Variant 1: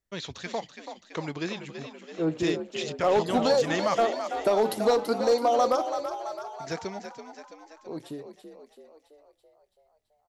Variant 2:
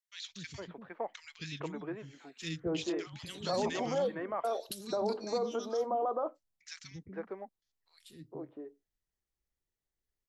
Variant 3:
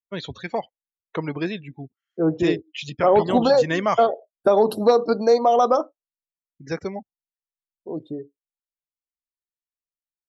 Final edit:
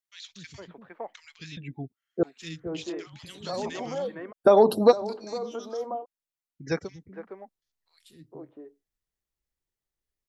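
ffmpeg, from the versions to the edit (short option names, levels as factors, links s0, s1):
-filter_complex "[2:a]asplit=3[s0][s1][s2];[1:a]asplit=4[s3][s4][s5][s6];[s3]atrim=end=1.572[s7];[s0]atrim=start=1.568:end=2.232[s8];[s4]atrim=start=2.228:end=4.33[s9];[s1]atrim=start=4.31:end=4.93[s10];[s5]atrim=start=4.91:end=6.06[s11];[s2]atrim=start=5.96:end=6.9[s12];[s6]atrim=start=6.8[s13];[s7][s8]acrossfade=d=0.004:c1=hsin:c2=hsin[s14];[s14][s9]acrossfade=d=0.004:c1=hsin:c2=hsin[s15];[s15][s10]acrossfade=d=0.02:c1=tri:c2=tri[s16];[s16][s11]acrossfade=d=0.02:c1=tri:c2=tri[s17];[s17][s12]acrossfade=d=0.1:c1=tri:c2=tri[s18];[s18][s13]acrossfade=d=0.1:c1=tri:c2=tri"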